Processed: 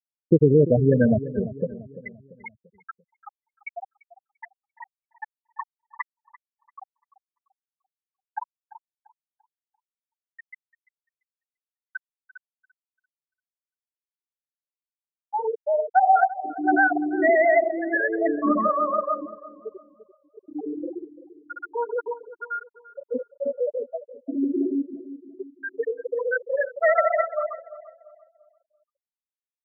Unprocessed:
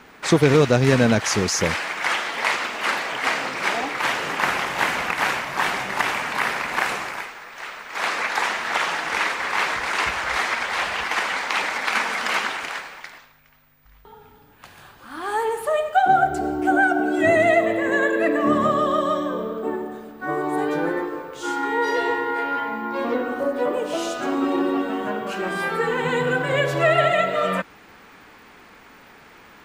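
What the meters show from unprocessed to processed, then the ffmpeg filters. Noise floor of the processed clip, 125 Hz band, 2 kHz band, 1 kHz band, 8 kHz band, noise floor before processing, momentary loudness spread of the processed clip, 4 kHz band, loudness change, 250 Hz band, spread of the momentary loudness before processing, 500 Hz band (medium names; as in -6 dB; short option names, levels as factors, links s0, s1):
under -85 dBFS, no reading, -8.5 dB, -4.5 dB, under -40 dB, -49 dBFS, 22 LU, under -40 dB, -1.5 dB, -2.5 dB, 10 LU, -2.5 dB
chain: -filter_complex "[0:a]afftfilt=real='re*gte(hypot(re,im),0.562)':imag='im*gte(hypot(re,im),0.562)':win_size=1024:overlap=0.75,asplit=2[s0][s1];[s1]adelay=342,lowpass=f=910:p=1,volume=0.2,asplit=2[s2][s3];[s3]adelay=342,lowpass=f=910:p=1,volume=0.45,asplit=2[s4][s5];[s5]adelay=342,lowpass=f=910:p=1,volume=0.45,asplit=2[s6][s7];[s7]adelay=342,lowpass=f=910:p=1,volume=0.45[s8];[s0][s2][s4][s6][s8]amix=inputs=5:normalize=0"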